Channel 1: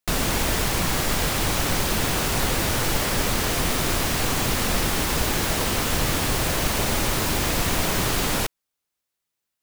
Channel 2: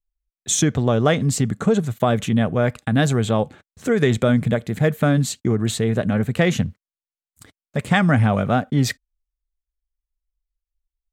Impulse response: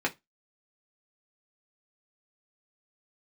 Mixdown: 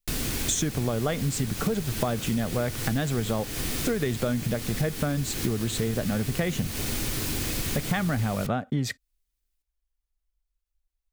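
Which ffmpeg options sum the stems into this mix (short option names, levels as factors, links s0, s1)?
-filter_complex "[0:a]equalizer=f=890:t=o:w=2.4:g=-14,volume=0.631,asplit=2[s0][s1];[s1]volume=0.266[s2];[1:a]volume=1.19[s3];[2:a]atrim=start_sample=2205[s4];[s2][s4]afir=irnorm=-1:irlink=0[s5];[s0][s3][s5]amix=inputs=3:normalize=0,acompressor=threshold=0.0631:ratio=6"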